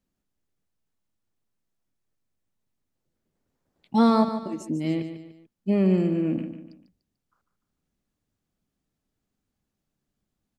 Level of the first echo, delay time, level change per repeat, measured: -10.0 dB, 147 ms, -8.0 dB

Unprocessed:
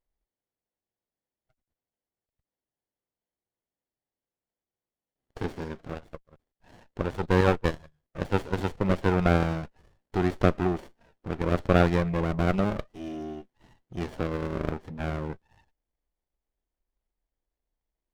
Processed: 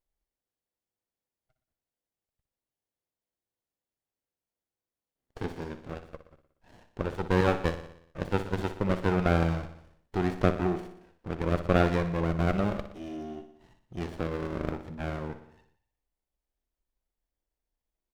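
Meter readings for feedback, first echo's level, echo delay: 59%, -11.5 dB, 60 ms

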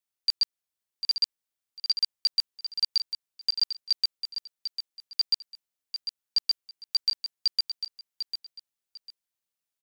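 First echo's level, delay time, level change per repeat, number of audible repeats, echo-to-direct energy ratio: -9.0 dB, 748 ms, -12.5 dB, 2, -9.0 dB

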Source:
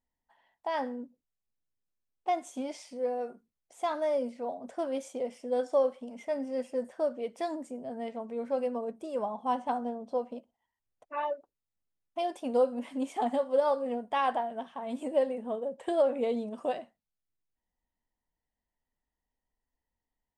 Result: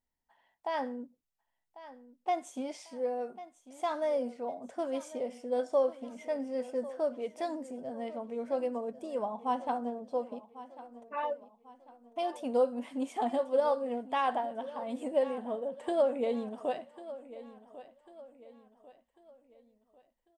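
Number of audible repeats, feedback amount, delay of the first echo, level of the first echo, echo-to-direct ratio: 3, 41%, 1096 ms, -16.0 dB, -15.0 dB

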